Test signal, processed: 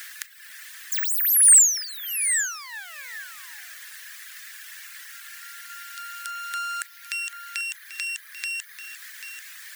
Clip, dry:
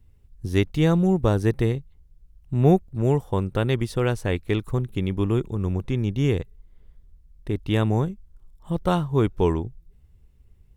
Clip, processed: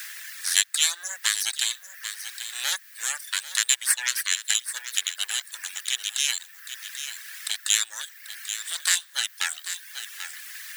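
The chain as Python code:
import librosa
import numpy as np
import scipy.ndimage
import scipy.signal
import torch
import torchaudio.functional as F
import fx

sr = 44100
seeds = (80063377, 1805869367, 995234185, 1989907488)

p1 = fx.high_shelf_res(x, sr, hz=2700.0, db=13.5, q=3.0)
p2 = np.abs(p1)
p3 = fx.peak_eq(p2, sr, hz=8500.0, db=13.5, octaves=1.3)
p4 = fx.quant_dither(p3, sr, seeds[0], bits=6, dither='triangular')
p5 = p3 + (p4 * librosa.db_to_amplitude(-3.5))
p6 = fx.dereverb_blind(p5, sr, rt60_s=0.86)
p7 = fx.ladder_highpass(p6, sr, hz=1600.0, resonance_pct=75)
p8 = p7 + 10.0 ** (-14.5 / 20.0) * np.pad(p7, (int(789 * sr / 1000.0), 0))[:len(p7)]
p9 = fx.band_squash(p8, sr, depth_pct=40)
y = p9 * librosa.db_to_amplitude(5.0)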